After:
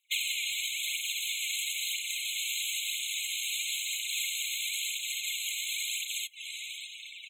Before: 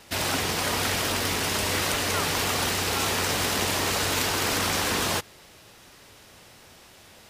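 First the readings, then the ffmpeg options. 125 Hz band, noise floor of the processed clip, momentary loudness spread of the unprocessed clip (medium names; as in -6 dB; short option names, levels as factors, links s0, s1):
under -40 dB, -46 dBFS, 1 LU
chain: -filter_complex "[0:a]equalizer=f=470:w=0.35:g=7.5,dynaudnorm=f=190:g=7:m=4.22,aphaser=in_gain=1:out_gain=1:delay=3.7:decay=0.56:speed=1:type=triangular,bandreject=f=60:t=h:w=6,bandreject=f=120:t=h:w=6,bandreject=f=180:t=h:w=6,asplit=2[s0][s1];[s1]aecho=0:1:1065:0.596[s2];[s0][s2]amix=inputs=2:normalize=0,acompressor=threshold=0.0562:ratio=8,asoftclip=type=tanh:threshold=0.0794,aeval=exprs='0.0794*(cos(1*acos(clip(val(0)/0.0794,-1,1)))-cos(1*PI/2))+0.00355*(cos(3*acos(clip(val(0)/0.0794,-1,1)))-cos(3*PI/2))+0.00631*(cos(5*acos(clip(val(0)/0.0794,-1,1)))-cos(5*PI/2))+0.00891*(cos(7*acos(clip(val(0)/0.0794,-1,1)))-cos(7*PI/2))':c=same,acrusher=bits=3:mode=log:mix=0:aa=0.000001,afftdn=nr=26:nf=-45,adynamicequalizer=threshold=0.00447:dfrequency=2500:dqfactor=1.4:tfrequency=2500:tqfactor=1.4:attack=5:release=100:ratio=0.375:range=2.5:mode=cutabove:tftype=bell,afftfilt=real='re*eq(mod(floor(b*sr/1024/2100),2),1)':imag='im*eq(mod(floor(b*sr/1024/2100),2),1)':win_size=1024:overlap=0.75,volume=2.11"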